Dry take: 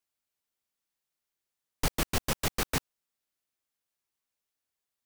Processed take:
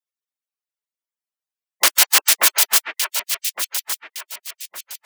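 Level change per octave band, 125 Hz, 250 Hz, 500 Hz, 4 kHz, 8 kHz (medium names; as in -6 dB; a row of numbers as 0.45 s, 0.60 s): under -25 dB, -7.5 dB, +4.0 dB, +18.5 dB, +20.5 dB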